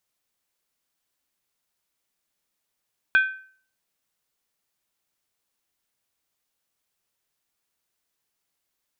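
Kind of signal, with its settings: skin hit, lowest mode 1.54 kHz, decay 0.48 s, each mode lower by 10 dB, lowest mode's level -12 dB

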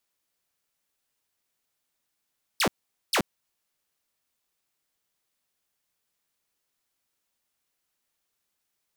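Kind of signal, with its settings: burst of laser zaps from 5.8 kHz, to 140 Hz, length 0.08 s saw, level -18 dB, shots 2, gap 0.45 s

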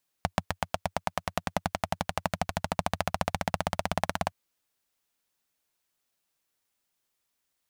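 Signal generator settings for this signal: single-cylinder engine model, changing speed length 4.07 s, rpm 900, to 2100, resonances 92/170/680 Hz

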